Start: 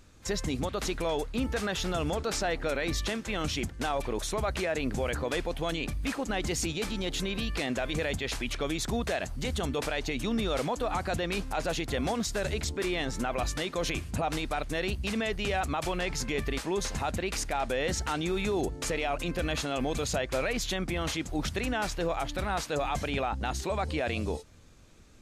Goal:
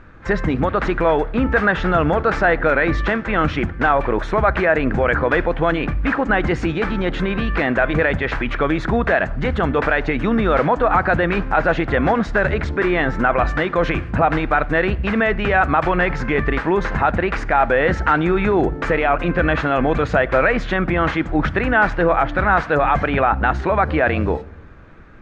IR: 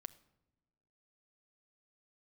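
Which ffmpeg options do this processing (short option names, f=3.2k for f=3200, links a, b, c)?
-filter_complex "[0:a]lowpass=f=1.6k:t=q:w=2.3,asplit=2[a][b];[1:a]atrim=start_sample=2205[c];[b][c]afir=irnorm=-1:irlink=0,volume=11dB[d];[a][d]amix=inputs=2:normalize=0,volume=3dB"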